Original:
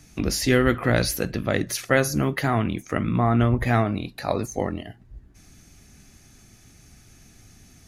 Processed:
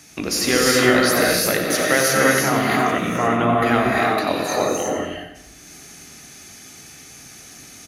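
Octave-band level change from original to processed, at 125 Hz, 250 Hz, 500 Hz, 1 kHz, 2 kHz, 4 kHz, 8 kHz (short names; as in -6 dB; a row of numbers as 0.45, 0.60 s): -4.5, +3.0, +6.0, +8.0, +8.5, +9.5, +10.0 dB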